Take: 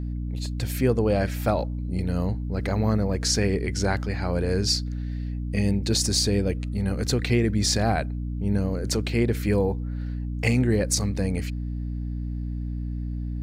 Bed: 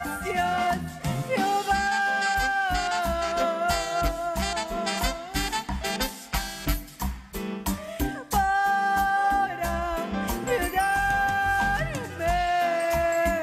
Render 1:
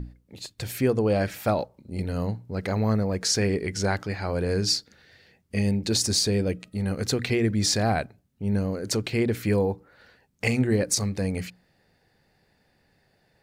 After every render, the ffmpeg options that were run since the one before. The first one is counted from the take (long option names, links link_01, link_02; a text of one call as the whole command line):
ffmpeg -i in.wav -af "bandreject=frequency=60:width_type=h:width=6,bandreject=frequency=120:width_type=h:width=6,bandreject=frequency=180:width_type=h:width=6,bandreject=frequency=240:width_type=h:width=6,bandreject=frequency=300:width_type=h:width=6" out.wav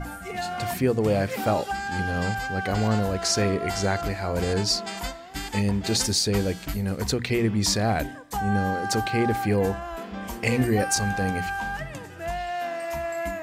ffmpeg -i in.wav -i bed.wav -filter_complex "[1:a]volume=-6dB[link_01];[0:a][link_01]amix=inputs=2:normalize=0" out.wav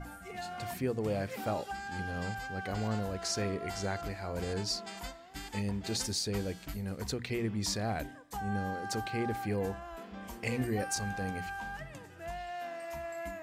ffmpeg -i in.wav -af "volume=-10.5dB" out.wav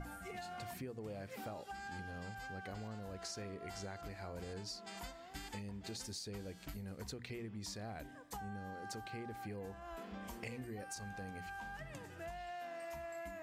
ffmpeg -i in.wav -af "acompressor=threshold=-44dB:ratio=6" out.wav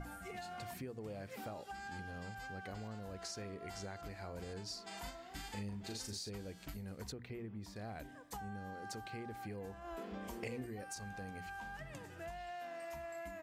ffmpeg -i in.wav -filter_complex "[0:a]asplit=3[link_01][link_02][link_03];[link_01]afade=type=out:start_time=4.69:duration=0.02[link_04];[link_02]asplit=2[link_05][link_06];[link_06]adelay=39,volume=-5dB[link_07];[link_05][link_07]amix=inputs=2:normalize=0,afade=type=in:start_time=4.69:duration=0.02,afade=type=out:start_time=6.29:duration=0.02[link_08];[link_03]afade=type=in:start_time=6.29:duration=0.02[link_09];[link_04][link_08][link_09]amix=inputs=3:normalize=0,asettb=1/sr,asplit=3[link_10][link_11][link_12];[link_10]atrim=end=7.124[link_13];[link_11]atrim=start=7.12:end=7.76,asetpts=PTS-STARTPTS,afade=type=in:duration=0.004:curve=qsin,afade=type=out:start_time=0.636:duration=0.004:curve=qsin,equalizer=frequency=6600:width_type=o:width=2.3:gain=-13[link_14];[link_12]atrim=start=7.756[link_15];[link_13][link_14]acrossfade=duration=0.004:curve1=hsin:curve2=qsin[link_16];[link_16][link_15]acrossfade=duration=0.004:curve1=qsin:curve2=hsin,asettb=1/sr,asplit=3[link_17][link_18][link_19];[link_17]atrim=end=9.844[link_20];[link_18]atrim=start=9.84:end=10.66,asetpts=PTS-STARTPTS,afade=type=in:duration=0.004:curve=qsin,afade=type=out:start_time=0.816:duration=0.004:curve=qsin,equalizer=frequency=400:width=1.3:gain=7[link_21];[link_19]atrim=start=10.656[link_22];[link_20][link_21]acrossfade=duration=0.004:curve1=hsin:curve2=qsin[link_23];[link_23][link_22]acrossfade=duration=0.004:curve1=qsin:curve2=hsin" out.wav